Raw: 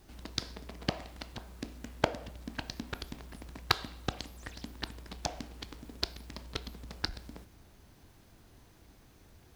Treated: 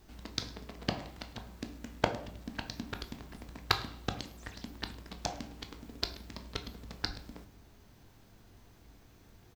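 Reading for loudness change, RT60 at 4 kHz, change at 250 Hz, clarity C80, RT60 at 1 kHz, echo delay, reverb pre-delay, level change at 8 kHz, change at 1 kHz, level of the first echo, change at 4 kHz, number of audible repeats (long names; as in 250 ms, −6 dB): −0.5 dB, 0.30 s, +0.5 dB, 18.0 dB, 0.50 s, 106 ms, 4 ms, −1.0 dB, 0.0 dB, −22.5 dB, −0.5 dB, 1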